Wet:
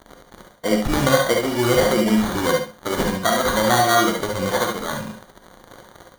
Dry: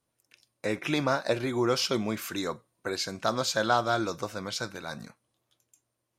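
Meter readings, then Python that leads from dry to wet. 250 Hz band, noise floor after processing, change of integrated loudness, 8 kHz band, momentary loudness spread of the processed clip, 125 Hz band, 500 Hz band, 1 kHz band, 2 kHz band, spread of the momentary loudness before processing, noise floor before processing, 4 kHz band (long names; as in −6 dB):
+11.0 dB, −51 dBFS, +10.0 dB, +10.5 dB, 10 LU, +10.5 dB, +10.5 dB, +10.0 dB, +10.0 dB, 11 LU, −81 dBFS, +7.5 dB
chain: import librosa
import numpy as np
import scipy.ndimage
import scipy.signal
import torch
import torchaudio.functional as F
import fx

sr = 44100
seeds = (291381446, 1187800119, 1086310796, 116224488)

p1 = fx.spec_ripple(x, sr, per_octave=1.9, drift_hz=-1.5, depth_db=16)
p2 = fx.high_shelf(p1, sr, hz=11000.0, db=5.0)
p3 = fx.rider(p2, sr, range_db=3, speed_s=0.5)
p4 = p2 + F.gain(torch.from_numpy(p3), 3.0).numpy()
p5 = fx.dmg_crackle(p4, sr, seeds[0], per_s=450.0, level_db=-29.0)
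p6 = fx.sample_hold(p5, sr, seeds[1], rate_hz=2600.0, jitter_pct=0)
p7 = p6 + fx.echo_feedback(p6, sr, ms=70, feedback_pct=18, wet_db=-9.0, dry=0)
p8 = fx.rev_gated(p7, sr, seeds[2], gate_ms=90, shape='rising', drr_db=2.5)
y = F.gain(torch.from_numpy(p8), -2.5).numpy()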